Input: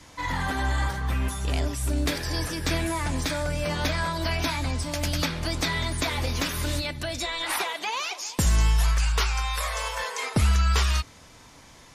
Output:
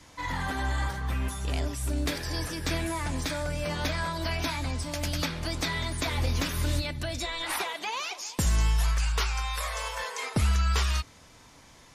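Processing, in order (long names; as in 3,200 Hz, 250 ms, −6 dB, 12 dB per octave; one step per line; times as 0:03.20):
0:06.05–0:08.22: low-shelf EQ 190 Hz +6 dB
level −3.5 dB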